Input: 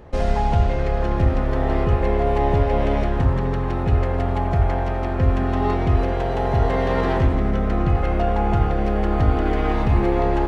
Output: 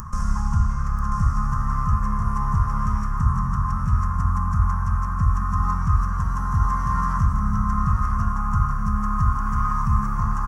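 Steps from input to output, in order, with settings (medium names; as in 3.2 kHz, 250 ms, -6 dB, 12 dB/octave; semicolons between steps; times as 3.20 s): FFT filter 210 Hz 0 dB, 310 Hz -30 dB, 740 Hz -27 dB, 1.1 kHz +13 dB, 2.2 kHz -18 dB, 4 kHz -20 dB, 5.7 kHz +7 dB; upward compressor, threshold -23 dBFS; delay 989 ms -6.5 dB; trim -1.5 dB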